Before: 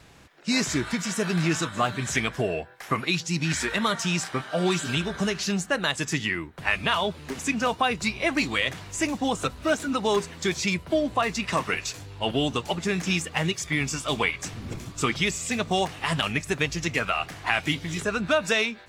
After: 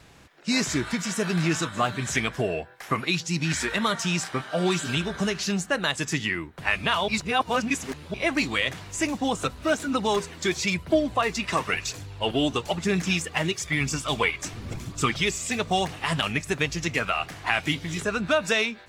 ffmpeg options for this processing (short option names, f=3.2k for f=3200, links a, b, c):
-filter_complex "[0:a]asettb=1/sr,asplit=3[a][b][c];[a]atrim=end=9.944[d];[b]atrim=start=9.94:end=15.97,asetpts=PTS-STARTPTS,afade=t=in:d=0.004:c=qsin,afade=t=out:st=6.026:d=0.004:c=qsin,aphaser=in_gain=1:out_gain=1:delay=3.4:decay=0.33:speed=1:type=triangular[e];[c]atrim=start=15.966[f];[d][e]acrossfade=d=0.004:c1=hsin:c2=qsin[g];[g][f]acrossfade=d=0.004:c1=qsin:c2=hsin,asplit=3[h][i][j];[h]atrim=end=7.082[k];[i]atrim=start=7.078:end=8.142,asetpts=PTS-STARTPTS,areverse[l];[j]atrim=start=8.138[m];[k][l]acrossfade=d=0.004:c1=hsin:c2=hsin[n];[n][m]acrossfade=d=0.004:c1=hsin:c2=hsin"